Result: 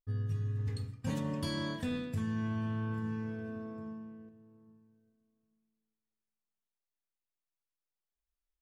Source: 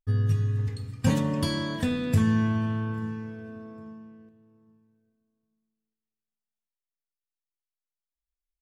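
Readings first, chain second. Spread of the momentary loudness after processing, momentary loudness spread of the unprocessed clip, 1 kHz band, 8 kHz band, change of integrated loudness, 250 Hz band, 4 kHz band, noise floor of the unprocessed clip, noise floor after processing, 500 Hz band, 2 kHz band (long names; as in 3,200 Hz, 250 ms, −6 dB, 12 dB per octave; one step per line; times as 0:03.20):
10 LU, 19 LU, −8.5 dB, below −10 dB, −10.0 dB, −9.0 dB, −8.0 dB, below −85 dBFS, below −85 dBFS, −8.0 dB, −8.0 dB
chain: reversed playback
downward compressor 5 to 1, threshold −33 dBFS, peak gain reduction 15 dB
reversed playback
one half of a high-frequency compander decoder only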